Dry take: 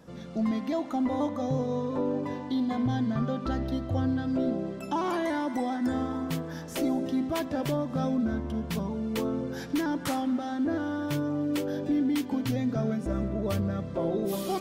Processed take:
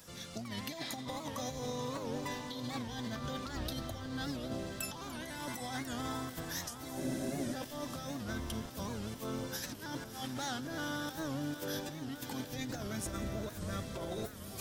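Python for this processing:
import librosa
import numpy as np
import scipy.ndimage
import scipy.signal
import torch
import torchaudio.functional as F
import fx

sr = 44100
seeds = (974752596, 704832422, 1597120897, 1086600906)

y = fx.octave_divider(x, sr, octaves=1, level_db=-5.0)
y = scipy.signal.lfilter([1.0, -0.97], [1.0], y)
y = fx.spec_repair(y, sr, seeds[0], start_s=0.77, length_s=0.37, low_hz=1100.0, high_hz=5500.0, source='both')
y = fx.low_shelf(y, sr, hz=160.0, db=9.0)
y = fx.over_compress(y, sr, threshold_db=-51.0, ratio=-0.5)
y = fx.echo_diffused(y, sr, ms=644, feedback_pct=67, wet_db=-10.5)
y = fx.spec_freeze(y, sr, seeds[1], at_s=7.02, hold_s=0.51)
y = fx.record_warp(y, sr, rpm=78.0, depth_cents=160.0)
y = F.gain(torch.from_numpy(y), 10.5).numpy()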